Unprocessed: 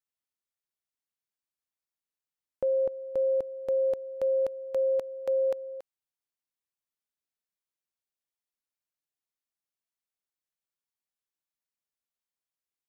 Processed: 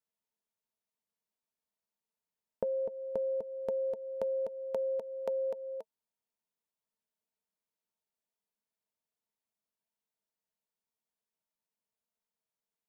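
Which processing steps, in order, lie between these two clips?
compression 3:1, threshold -34 dBFS, peak gain reduction 7.5 dB; small resonant body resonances 210/450/640/900 Hz, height 13 dB, ringing for 50 ms; trim -3.5 dB

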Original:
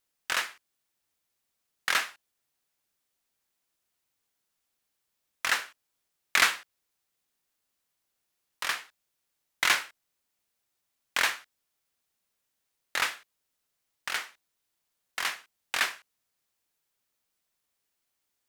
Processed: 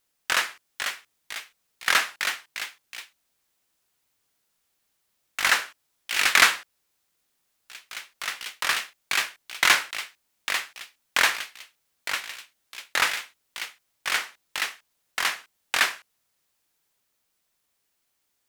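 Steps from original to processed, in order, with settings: ever faster or slower copies 534 ms, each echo +2 st, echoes 3, each echo -6 dB; trim +5.5 dB

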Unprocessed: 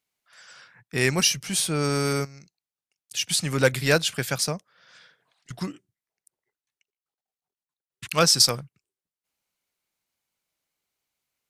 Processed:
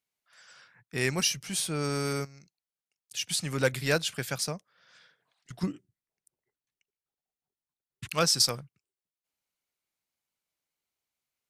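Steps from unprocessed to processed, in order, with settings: 5.63–8.13 s: bass shelf 420 Hz +10 dB; trim -6 dB

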